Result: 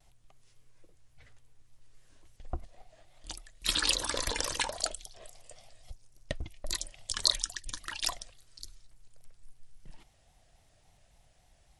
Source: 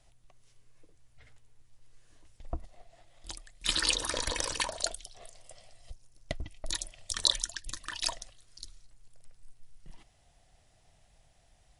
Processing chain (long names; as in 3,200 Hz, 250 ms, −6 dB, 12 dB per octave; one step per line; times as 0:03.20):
pitch modulation by a square or saw wave square 3.6 Hz, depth 100 cents